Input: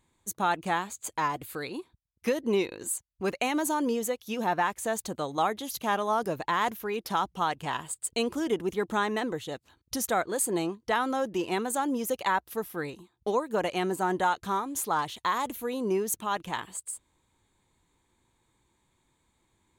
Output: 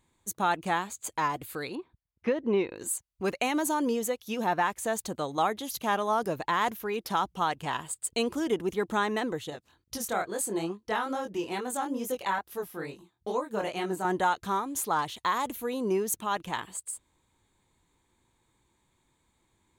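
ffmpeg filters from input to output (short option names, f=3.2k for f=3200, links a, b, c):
-filter_complex "[0:a]asettb=1/sr,asplit=3[a][b][c];[a]atrim=end=1.754[d];[b]atrim=start=1.75:end=2.76,asetpts=PTS-STARTPTS,afade=t=in:d=0.004:c=qsin,afade=t=out:st=1.006:d=0.004:c=qsin,lowpass=2.4k[e];[c]atrim=start=2.756[f];[d][e]acrossfade=d=0.004:c1=hsin:c2=qsin[g];[g][f]acrossfade=d=0.004:c1=qsin:c2=hsin,asettb=1/sr,asplit=3[h][i][j];[h]atrim=end=9.504[k];[i]atrim=start=9.5:end=14.05,asetpts=PTS-STARTPTS,afade=t=in:d=0.004:c=qsin,afade=t=out:st=4.546:d=0.004:c=qsin,flanger=delay=19.5:depth=6.1:speed=2.3[l];[j]atrim=start=14.046[m];[k][l]acrossfade=d=0.004:c1=hsin:c2=qsin[n];[n][m]acrossfade=d=0.004:c1=qsin:c2=hsin"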